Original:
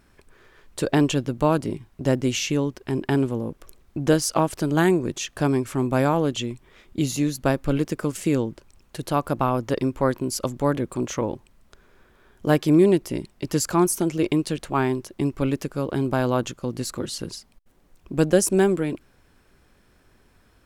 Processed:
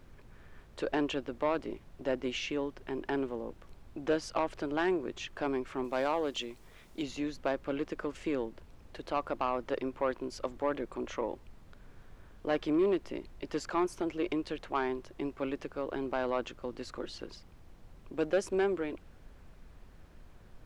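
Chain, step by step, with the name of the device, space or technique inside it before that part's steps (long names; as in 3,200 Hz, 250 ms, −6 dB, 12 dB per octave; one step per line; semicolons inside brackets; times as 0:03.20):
aircraft cabin announcement (band-pass filter 380–3,100 Hz; soft clipping −15 dBFS, distortion −15 dB; brown noise bed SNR 16 dB)
0:05.84–0:07.03: bass and treble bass −4 dB, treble +9 dB
level −5.5 dB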